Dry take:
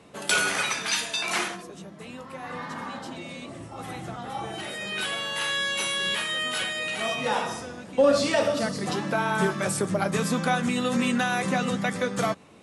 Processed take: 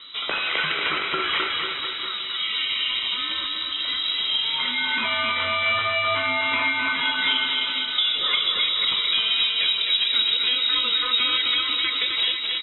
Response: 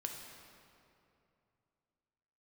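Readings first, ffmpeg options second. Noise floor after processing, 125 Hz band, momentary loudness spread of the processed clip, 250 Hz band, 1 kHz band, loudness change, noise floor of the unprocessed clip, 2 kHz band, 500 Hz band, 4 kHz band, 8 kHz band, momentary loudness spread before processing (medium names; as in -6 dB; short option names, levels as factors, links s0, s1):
-30 dBFS, -13.0 dB, 6 LU, -11.5 dB, +0.5 dB, +5.5 dB, -44 dBFS, +4.5 dB, -9.0 dB, +12.5 dB, under -40 dB, 15 LU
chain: -af "aecho=1:1:1.1:0.55,acompressor=threshold=0.0355:ratio=6,aeval=exprs='val(0)+0.00224*(sin(2*PI*50*n/s)+sin(2*PI*2*50*n/s)/2+sin(2*PI*3*50*n/s)/3+sin(2*PI*4*50*n/s)/4+sin(2*PI*5*50*n/s)/5)':c=same,aecho=1:1:260|494|704.6|894.1|1065:0.631|0.398|0.251|0.158|0.1,lowpass=f=3400:t=q:w=0.5098,lowpass=f=3400:t=q:w=0.6013,lowpass=f=3400:t=q:w=0.9,lowpass=f=3400:t=q:w=2.563,afreqshift=-4000,volume=2.51"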